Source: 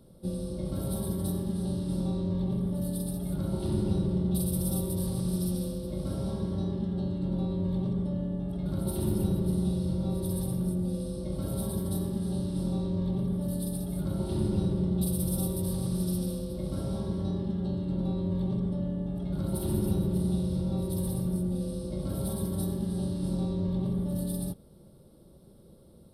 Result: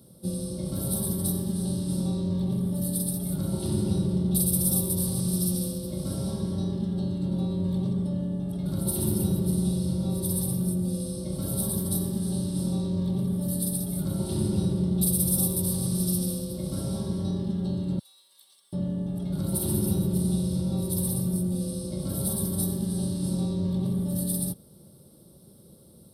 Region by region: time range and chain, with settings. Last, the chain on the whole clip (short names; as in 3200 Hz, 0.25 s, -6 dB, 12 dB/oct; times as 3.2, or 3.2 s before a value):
17.99–18.73 HPF 1300 Hz + differentiator
whole clip: HPF 92 Hz 12 dB/oct; tone controls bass +4 dB, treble +12 dB